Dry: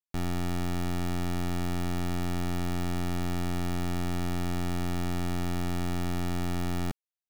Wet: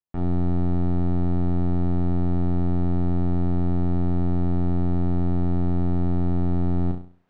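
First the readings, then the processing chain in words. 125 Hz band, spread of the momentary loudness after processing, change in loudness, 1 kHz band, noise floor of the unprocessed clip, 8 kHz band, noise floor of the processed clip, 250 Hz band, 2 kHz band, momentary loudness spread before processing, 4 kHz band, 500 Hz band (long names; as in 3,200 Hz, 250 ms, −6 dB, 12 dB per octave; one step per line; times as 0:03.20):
+9.0 dB, 0 LU, +7.5 dB, +0.5 dB, below −85 dBFS, below −30 dB, −43 dBFS, +8.0 dB, can't be measured, 0 LU, below −15 dB, +5.5 dB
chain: low-pass filter 1,200 Hz 12 dB per octave
reversed playback
upward compression, threshold −53 dBFS
reversed playback
flutter between parallel walls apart 5.8 metres, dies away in 0.43 s
level +2 dB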